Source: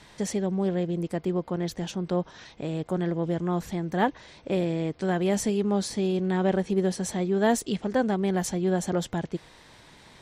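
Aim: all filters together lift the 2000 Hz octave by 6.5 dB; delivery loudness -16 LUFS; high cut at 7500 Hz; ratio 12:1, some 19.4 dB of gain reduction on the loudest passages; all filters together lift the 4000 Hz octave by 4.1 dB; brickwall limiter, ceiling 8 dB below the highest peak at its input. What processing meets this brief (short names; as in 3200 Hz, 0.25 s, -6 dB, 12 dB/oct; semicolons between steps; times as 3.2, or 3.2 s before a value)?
LPF 7500 Hz; bell 2000 Hz +7.5 dB; bell 4000 Hz +3 dB; compressor 12:1, threshold -37 dBFS; gain +28.5 dB; limiter -6 dBFS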